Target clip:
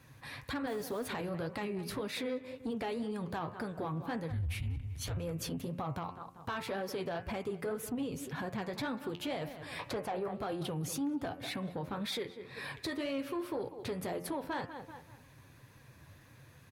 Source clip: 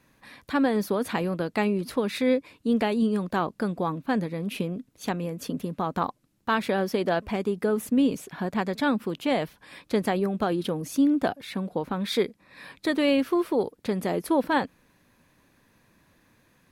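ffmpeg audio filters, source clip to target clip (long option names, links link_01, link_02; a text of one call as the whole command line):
ffmpeg -i in.wav -filter_complex "[0:a]asettb=1/sr,asplit=3[link_01][link_02][link_03];[link_01]atrim=end=0.674[link_04];[link_02]atrim=start=0.67:end=1.08,asetpts=PTS-STARTPTS,afade=type=in:duration=0.004:curve=qsin,afade=type=out:start_time=0.406:duration=0.004:curve=qsin,acrusher=bits=6:mix=0:aa=0.5[link_05];[link_03]atrim=start=1.076[link_06];[link_04][link_05]acrossfade=duration=0.004:curve1=hsin:curve2=qsin[link_07];[link_07][link_06]acrossfade=duration=0.004:curve1=qsin:curve2=hsin,asettb=1/sr,asplit=3[link_08][link_09][link_10];[link_08]atrim=end=4.304[link_11];[link_09]atrim=start=4.3:end=5.17,asetpts=PTS-STARTPTS,afade=type=in:duration=0.004:curve=qsin,afade=type=out:start_time=0.866:duration=0.004:curve=qsin,afreqshift=-270[link_12];[link_10]atrim=start=5.166[link_13];[link_11][link_12]acrossfade=duration=0.004:curve1=hsin:curve2=qsin[link_14];[link_14][link_13]acrossfade=duration=0.004:curve1=qsin:curve2=hsin,asettb=1/sr,asplit=3[link_15][link_16][link_17];[link_15]atrim=end=9.794[link_18];[link_16]atrim=start=9.79:end=10.28,asetpts=PTS-STARTPTS,afade=type=in:duration=0.004:curve=qsin,afade=type=out:start_time=0.486:duration=0.004:curve=qsin,equalizer=frequency=800:width=0.58:gain=14.5[link_19];[link_17]atrim=start=10.276[link_20];[link_18][link_19]acrossfade=duration=0.004:curve1=hsin:curve2=qsin[link_21];[link_21][link_20]acrossfade=duration=0.004:curve1=qsin:curve2=hsin,asplit=2[link_22][link_23];[link_23]adelay=192,lowpass=frequency=3800:poles=1,volume=-18.5dB,asplit=2[link_24][link_25];[link_25]adelay=192,lowpass=frequency=3800:poles=1,volume=0.3,asplit=2[link_26][link_27];[link_27]adelay=192,lowpass=frequency=3800:poles=1,volume=0.3[link_28];[link_22][link_24][link_26][link_28]amix=inputs=4:normalize=0,acompressor=threshold=-37dB:ratio=2.5,flanger=delay=3.6:depth=8.6:regen=42:speed=1.9:shape=sinusoidal,asoftclip=type=tanh:threshold=-30.5dB,lowshelf=frequency=160:width_type=q:width=3:gain=6.5,bandreject=frequency=88.38:width_type=h:width=4,bandreject=frequency=176.76:width_type=h:width=4,bandreject=frequency=265.14:width_type=h:width=4,bandreject=frequency=353.52:width_type=h:width=4,bandreject=frequency=441.9:width_type=h:width=4,bandreject=frequency=530.28:width_type=h:width=4,bandreject=frequency=618.66:width_type=h:width=4,bandreject=frequency=707.04:width_type=h:width=4,bandreject=frequency=795.42:width_type=h:width=4,bandreject=frequency=883.8:width_type=h:width=4,bandreject=frequency=972.18:width_type=h:width=4,bandreject=frequency=1060.56:width_type=h:width=4,bandreject=frequency=1148.94:width_type=h:width=4,bandreject=frequency=1237.32:width_type=h:width=4,bandreject=frequency=1325.7:width_type=h:width=4,bandreject=frequency=1414.08:width_type=h:width=4,bandreject=frequency=1502.46:width_type=h:width=4,bandreject=frequency=1590.84:width_type=h:width=4,bandreject=frequency=1679.22:width_type=h:width=4,bandreject=frequency=1767.6:width_type=h:width=4,bandreject=frequency=1855.98:width_type=h:width=4,bandreject=frequency=1944.36:width_type=h:width=4,bandreject=frequency=2032.74:width_type=h:width=4,bandreject=frequency=2121.12:width_type=h:width=4,bandreject=frequency=2209.5:width_type=h:width=4,bandreject=frequency=2297.88:width_type=h:width=4,bandreject=frequency=2386.26:width_type=h:width=4,bandreject=frequency=2474.64:width_type=h:width=4,bandreject=frequency=2563.02:width_type=h:width=4,bandreject=frequency=2651.4:width_type=h:width=4,bandreject=frequency=2739.78:width_type=h:width=4,bandreject=frequency=2828.16:width_type=h:width=4,bandreject=frequency=2916.54:width_type=h:width=4,bandreject=frequency=3004.92:width_type=h:width=4,alimiter=level_in=12dB:limit=-24dB:level=0:latency=1:release=26,volume=-12dB,highpass=53,volume=6.5dB" out.wav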